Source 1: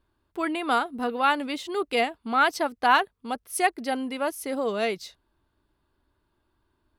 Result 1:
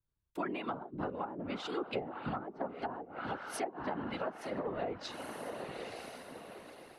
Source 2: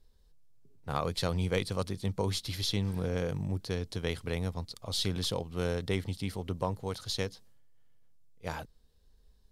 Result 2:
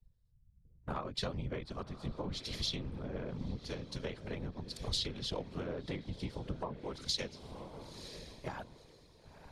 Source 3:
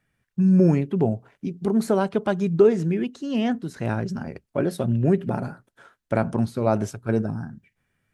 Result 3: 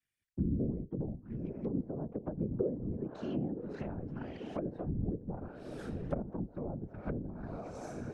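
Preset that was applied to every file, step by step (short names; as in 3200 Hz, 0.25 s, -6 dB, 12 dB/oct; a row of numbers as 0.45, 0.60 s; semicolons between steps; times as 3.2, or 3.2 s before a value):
diffused feedback echo 0.971 s, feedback 41%, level -13 dB; treble ducked by the level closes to 390 Hz, closed at -18.5 dBFS; compressor 4:1, threshold -40 dBFS; whisperiser; three-band expander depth 70%; gain +2.5 dB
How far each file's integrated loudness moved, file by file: -14.0, -6.5, -15.5 LU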